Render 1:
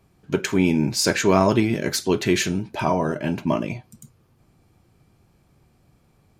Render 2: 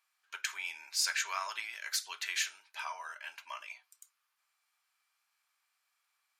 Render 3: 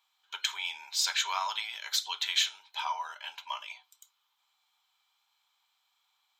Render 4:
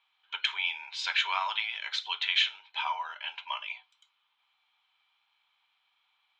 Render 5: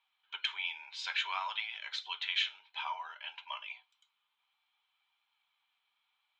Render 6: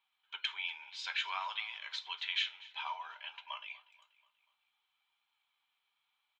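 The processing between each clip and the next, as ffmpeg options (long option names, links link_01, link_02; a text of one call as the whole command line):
ffmpeg -i in.wav -af "highpass=frequency=1200:width=0.5412,highpass=frequency=1200:width=1.3066,volume=-8dB" out.wav
ffmpeg -i in.wav -af "superequalizer=6b=0.562:9b=2.51:11b=0.631:13b=3.16:16b=0.355,volume=2dB" out.wav
ffmpeg -i in.wav -af "lowpass=frequency=2700:width_type=q:width=2" out.wav
ffmpeg -i in.wav -af "flanger=delay=1:depth=4:regen=75:speed=0.59:shape=triangular,volume=-2dB" out.wav
ffmpeg -i in.wav -af "aecho=1:1:242|484|726|968:0.1|0.049|0.024|0.0118,volume=-2dB" out.wav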